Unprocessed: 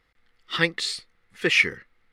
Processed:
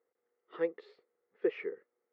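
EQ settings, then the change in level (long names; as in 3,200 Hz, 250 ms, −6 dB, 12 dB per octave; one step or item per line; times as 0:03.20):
four-pole ladder band-pass 480 Hz, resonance 65%
high-frequency loss of the air 82 metres
+2.0 dB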